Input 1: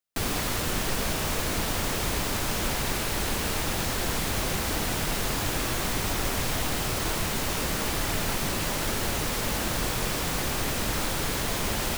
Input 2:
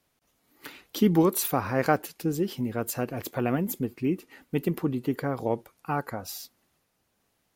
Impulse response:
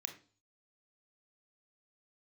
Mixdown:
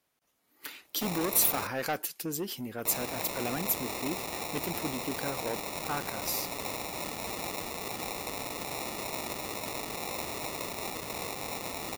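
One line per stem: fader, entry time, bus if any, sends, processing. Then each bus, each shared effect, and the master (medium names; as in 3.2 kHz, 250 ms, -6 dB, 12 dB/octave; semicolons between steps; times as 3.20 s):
-4.5 dB, 0.85 s, muted 1.67–2.85 s, no send, high-pass 890 Hz 12 dB/octave; upward compressor, threshold -46 dBFS; sample-and-hold 28×
-2.5 dB, 0.00 s, no send, saturation -20.5 dBFS, distortion -10 dB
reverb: none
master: tilt EQ +2.5 dB/octave; tape noise reduction on one side only decoder only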